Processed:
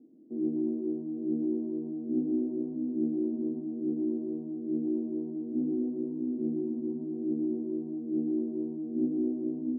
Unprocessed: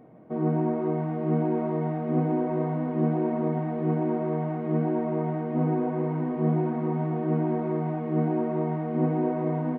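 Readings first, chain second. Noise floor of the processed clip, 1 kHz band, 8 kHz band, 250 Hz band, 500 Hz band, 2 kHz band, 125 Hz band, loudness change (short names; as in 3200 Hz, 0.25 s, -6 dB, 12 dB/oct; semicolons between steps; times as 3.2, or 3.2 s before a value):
-38 dBFS, under -30 dB, n/a, -2.5 dB, -8.5 dB, under -40 dB, -21.0 dB, -5.0 dB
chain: Butterworth band-pass 290 Hz, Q 2.6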